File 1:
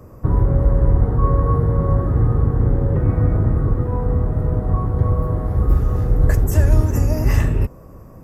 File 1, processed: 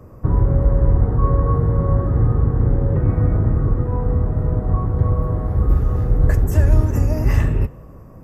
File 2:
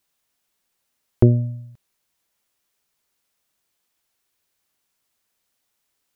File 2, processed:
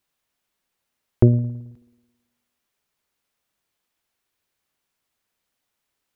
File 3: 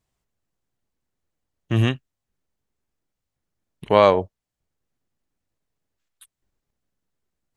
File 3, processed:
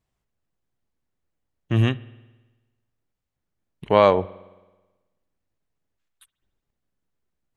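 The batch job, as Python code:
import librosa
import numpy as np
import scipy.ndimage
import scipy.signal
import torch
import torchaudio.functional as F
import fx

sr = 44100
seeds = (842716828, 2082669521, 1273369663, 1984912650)

y = fx.bass_treble(x, sr, bass_db=1, treble_db=-5)
y = fx.rev_spring(y, sr, rt60_s=1.2, pass_ms=(54,), chirp_ms=25, drr_db=20.0)
y = y * librosa.db_to_amplitude(-1.0)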